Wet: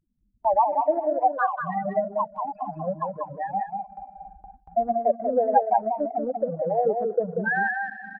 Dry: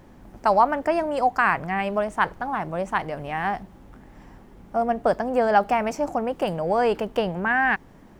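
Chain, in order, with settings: regenerating reverse delay 0.116 s, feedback 85%, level -12 dB; 2.52–4.77 dispersion lows, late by 95 ms, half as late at 2500 Hz; loudest bins only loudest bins 4; transient shaper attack +4 dB, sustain -10 dB; bell 1400 Hz +4 dB 0.26 oct; echo 0.189 s -5 dB; gate with hold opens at -34 dBFS; gain -1.5 dB

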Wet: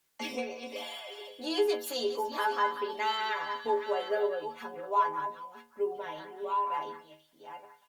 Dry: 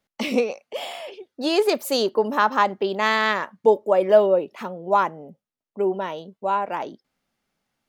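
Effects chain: reverse delay 0.51 s, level -10.5 dB; low shelf 240 Hz -11.5 dB; notch 5000 Hz, Q 18; comb 7.2 ms, depth 55%; in parallel at +0.5 dB: compressor 10:1, threshold -28 dBFS, peak gain reduction 17 dB; on the sum: metallic resonator 75 Hz, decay 0.49 s, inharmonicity 0.008; on a send: delay with a stepping band-pass 0.185 s, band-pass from 1500 Hz, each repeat 1.4 oct, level -6.5 dB; on the sum: requantised 12-bit, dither triangular; gain -2.5 dB; Opus 48 kbps 48000 Hz

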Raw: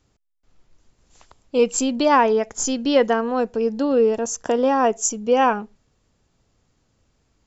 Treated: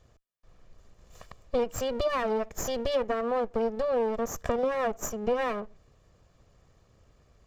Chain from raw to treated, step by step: minimum comb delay 1.7 ms; compressor 6:1, threshold -32 dBFS, peak gain reduction 18.5 dB; high shelf 2400 Hz -9 dB; gain +6.5 dB

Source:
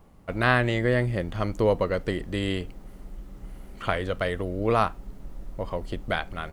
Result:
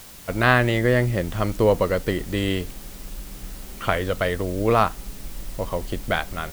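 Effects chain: requantised 8-bit, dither triangular; gain +4 dB

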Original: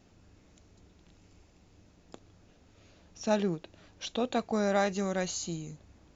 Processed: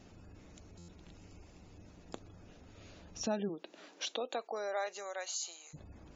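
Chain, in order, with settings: compressor 2.5:1, threshold -42 dBFS, peak gain reduction 13 dB; 3.48–5.73 HPF 220 Hz -> 780 Hz 24 dB/oct; spectral gate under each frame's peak -30 dB strong; stuck buffer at 0.78, samples 512, times 8; gain +4.5 dB

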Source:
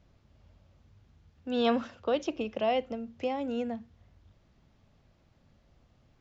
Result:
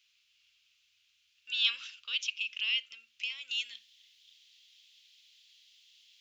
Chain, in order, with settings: resonant high shelf 2200 Hz +6.5 dB, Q 3, from 3.51 s +13.5 dB; inverse Chebyshev high-pass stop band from 810 Hz, stop band 40 dB

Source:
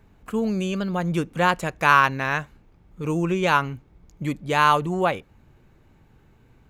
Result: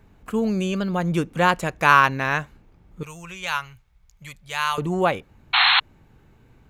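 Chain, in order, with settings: 3.03–4.78 passive tone stack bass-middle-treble 10-0-10; 5.53–5.8 painted sound noise 700–4300 Hz -18 dBFS; gain +1.5 dB

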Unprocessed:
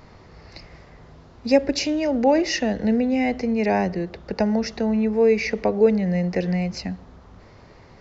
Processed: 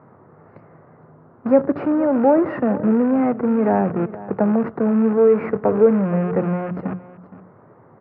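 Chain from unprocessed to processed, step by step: rattling part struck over -27 dBFS, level -21 dBFS; in parallel at -4 dB: Schmitt trigger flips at -26.5 dBFS; on the sum: elliptic band-pass 120–1400 Hz, stop band 60 dB; on a send: echo 0.467 s -17 dB; on the sum: wow and flutter 25 cents; notches 60/120/180 Hz; gain +1.5 dB

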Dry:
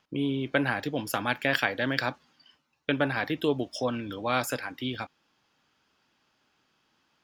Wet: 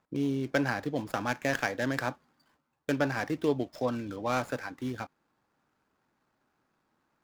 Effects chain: median filter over 15 samples; gain -1 dB

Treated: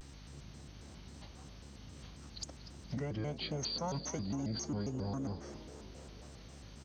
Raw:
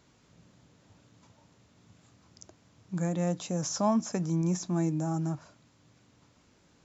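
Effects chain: high shelf 3600 Hz +10.5 dB; compressor 5:1, threshold -41 dBFS, peak gain reduction 17.5 dB; formant-preserving pitch shift -5.5 st; hum 60 Hz, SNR 11 dB; on a send: frequency-shifting echo 0.245 s, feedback 62%, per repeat +70 Hz, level -13.5 dB; on the sum: shaped vibrato square 3.7 Hz, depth 250 cents; gain +4.5 dB

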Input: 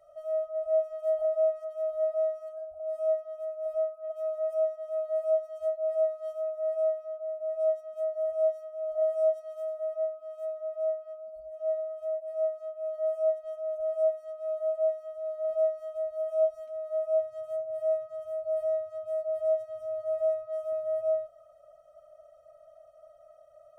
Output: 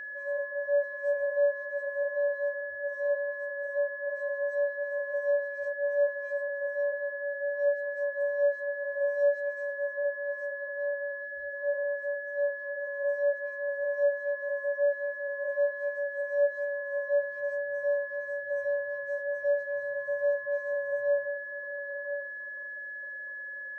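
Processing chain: inharmonic rescaling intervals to 89%; delay with a stepping band-pass 0.51 s, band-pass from 200 Hz, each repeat 1.4 oct, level -4.5 dB; whine 1700 Hz -37 dBFS

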